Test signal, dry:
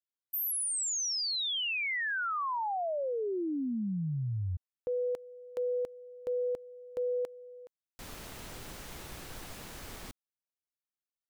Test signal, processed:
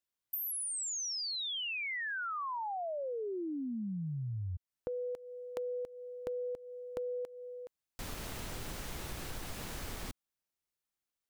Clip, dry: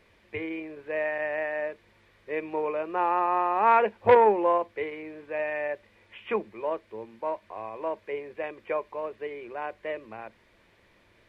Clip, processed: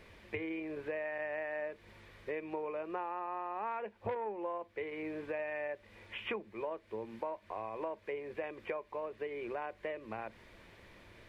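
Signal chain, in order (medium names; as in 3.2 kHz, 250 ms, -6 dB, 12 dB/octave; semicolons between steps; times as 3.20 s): bass shelf 150 Hz +4 dB; compression 8:1, threshold -40 dBFS; trim +3.5 dB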